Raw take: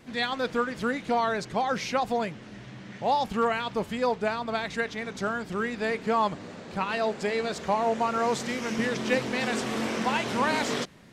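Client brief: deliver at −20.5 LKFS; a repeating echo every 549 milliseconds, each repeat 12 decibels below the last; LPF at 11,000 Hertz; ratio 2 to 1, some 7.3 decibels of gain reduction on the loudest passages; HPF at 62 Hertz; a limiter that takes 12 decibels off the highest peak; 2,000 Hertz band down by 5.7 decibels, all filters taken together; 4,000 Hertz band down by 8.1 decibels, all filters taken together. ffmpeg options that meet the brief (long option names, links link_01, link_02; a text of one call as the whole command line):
ffmpeg -i in.wav -af "highpass=62,lowpass=11000,equalizer=frequency=2000:width_type=o:gain=-5.5,equalizer=frequency=4000:width_type=o:gain=-8.5,acompressor=threshold=-35dB:ratio=2,alimiter=level_in=9dB:limit=-24dB:level=0:latency=1,volume=-9dB,aecho=1:1:549|1098|1647:0.251|0.0628|0.0157,volume=20.5dB" out.wav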